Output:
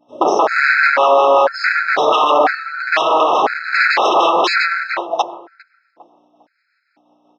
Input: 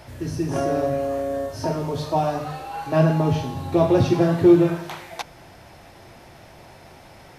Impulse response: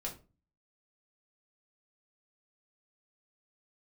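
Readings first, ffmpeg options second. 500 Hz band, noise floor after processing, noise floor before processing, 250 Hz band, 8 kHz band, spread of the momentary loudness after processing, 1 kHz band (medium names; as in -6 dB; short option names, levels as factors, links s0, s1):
+5.5 dB, -66 dBFS, -47 dBFS, -8.0 dB, no reading, 9 LU, +15.0 dB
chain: -filter_complex "[0:a]agate=range=0.0224:threshold=0.0251:ratio=3:detection=peak,afftdn=nr=13:nf=-42,tiltshelf=f=850:g=7.5,acrossover=split=3400[s0][s1];[s0]asoftclip=type=tanh:threshold=0.211[s2];[s1]acontrast=28[s3];[s2][s3]amix=inputs=2:normalize=0,aeval=exprs='val(0)+0.00178*(sin(2*PI*60*n/s)+sin(2*PI*2*60*n/s)/2+sin(2*PI*3*60*n/s)/3+sin(2*PI*4*60*n/s)/4+sin(2*PI*5*60*n/s)/5)':c=same,tremolo=f=5.6:d=0.33,aeval=exprs='0.0562*(abs(mod(val(0)/0.0562+3,4)-2)-1)':c=same,highpass=f=460:w=0.5412,highpass=f=460:w=1.3066,equalizer=f=500:t=q:w=4:g=-5,equalizer=f=1500:t=q:w=4:g=4,equalizer=f=3100:t=q:w=4:g=-5,lowpass=f=4800:w=0.5412,lowpass=f=4800:w=1.3066,asplit=2[s4][s5];[s5]adelay=403,lowpass=f=850:p=1,volume=0.141,asplit=2[s6][s7];[s7]adelay=403,lowpass=f=850:p=1,volume=0.38,asplit=2[s8][s9];[s9]adelay=403,lowpass=f=850:p=1,volume=0.38[s10];[s6][s8][s10]amix=inputs=3:normalize=0[s11];[s4][s11]amix=inputs=2:normalize=0,alimiter=level_in=25.1:limit=0.891:release=50:level=0:latency=1,afftfilt=real='re*gt(sin(2*PI*1*pts/sr)*(1-2*mod(floor(b*sr/1024/1300),2)),0)':imag='im*gt(sin(2*PI*1*pts/sr)*(1-2*mod(floor(b*sr/1024/1300),2)),0)':win_size=1024:overlap=0.75,volume=0.841"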